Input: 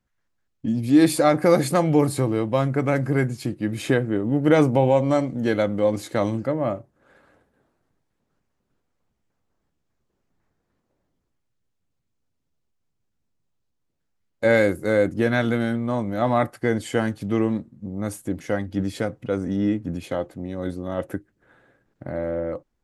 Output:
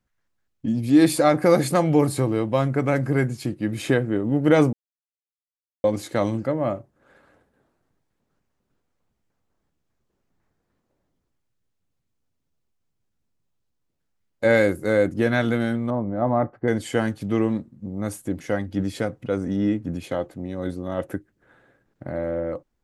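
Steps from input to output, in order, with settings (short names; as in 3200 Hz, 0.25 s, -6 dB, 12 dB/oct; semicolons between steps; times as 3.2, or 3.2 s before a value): 4.73–5.84 mute; 15.9–16.68 LPF 1000 Hz 12 dB/oct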